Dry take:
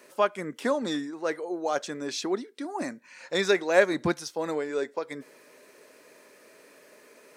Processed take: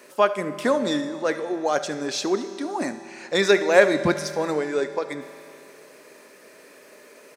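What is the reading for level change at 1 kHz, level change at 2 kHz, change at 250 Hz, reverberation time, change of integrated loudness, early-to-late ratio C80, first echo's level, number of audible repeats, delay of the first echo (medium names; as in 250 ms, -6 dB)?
+5.5 dB, +5.5 dB, +5.0 dB, 2.8 s, +5.5 dB, 12.0 dB, -17.5 dB, 1, 72 ms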